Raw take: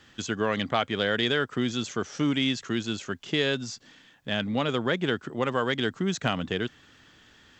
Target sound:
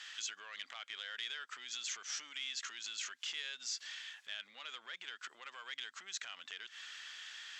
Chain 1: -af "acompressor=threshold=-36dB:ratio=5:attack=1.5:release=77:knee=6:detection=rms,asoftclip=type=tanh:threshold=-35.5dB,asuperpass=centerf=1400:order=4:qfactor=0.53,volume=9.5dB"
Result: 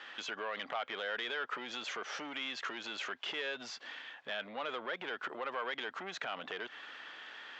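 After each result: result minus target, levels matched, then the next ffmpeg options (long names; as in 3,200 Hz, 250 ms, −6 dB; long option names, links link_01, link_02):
1,000 Hz band +9.0 dB; downward compressor: peak gain reduction −6 dB
-af "acompressor=threshold=-36dB:ratio=5:attack=1.5:release=77:knee=6:detection=rms,asoftclip=type=tanh:threshold=-35.5dB,asuperpass=centerf=4400:order=4:qfactor=0.53,volume=9.5dB"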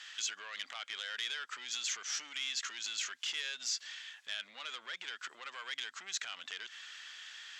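downward compressor: peak gain reduction −6 dB
-af "acompressor=threshold=-43.5dB:ratio=5:attack=1.5:release=77:knee=6:detection=rms,asoftclip=type=tanh:threshold=-35.5dB,asuperpass=centerf=4400:order=4:qfactor=0.53,volume=9.5dB"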